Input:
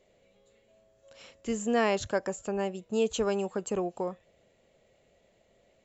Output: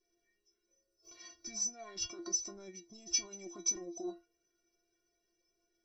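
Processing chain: formant shift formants -4 st; spectral noise reduction 10 dB; compressor with a negative ratio -33 dBFS, ratio -1; resonant high shelf 4.1 kHz +10 dB, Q 1.5; inharmonic resonator 340 Hz, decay 0.28 s, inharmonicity 0.008; trim +6 dB

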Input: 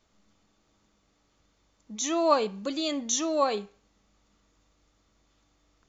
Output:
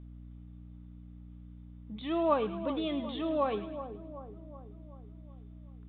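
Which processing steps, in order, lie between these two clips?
bass shelf 470 Hz +6.5 dB; hum 60 Hz, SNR 11 dB; on a send: two-band feedback delay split 1.2 kHz, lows 377 ms, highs 106 ms, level -11 dB; on the sum: resampled via 8 kHz; trim -7 dB

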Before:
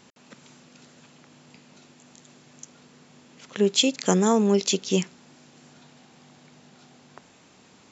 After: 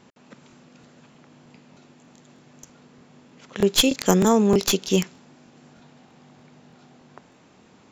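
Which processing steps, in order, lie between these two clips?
tracing distortion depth 0.04 ms; crackling interface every 0.31 s, samples 1024, repeat, from 0.48 s; tape noise reduction on one side only decoder only; trim +2.5 dB

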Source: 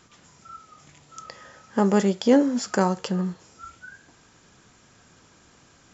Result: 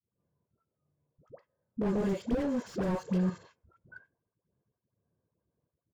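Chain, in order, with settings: level held to a coarse grid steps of 14 dB; high-pass 91 Hz 12 dB/octave; band-stop 1.3 kHz, Q 13; comb 1.9 ms, depth 43%; gate -48 dBFS, range -22 dB; bass shelf 220 Hz +5 dB; level-controlled noise filter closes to 600 Hz, open at -24.5 dBFS; phase dispersion highs, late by 94 ms, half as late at 610 Hz; slew-rate limiter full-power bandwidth 16 Hz

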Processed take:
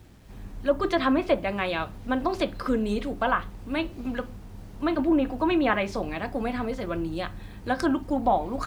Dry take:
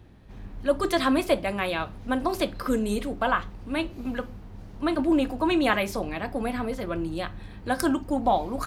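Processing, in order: low-pass that closes with the level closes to 2.2 kHz, closed at -18 dBFS; word length cut 10-bit, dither none

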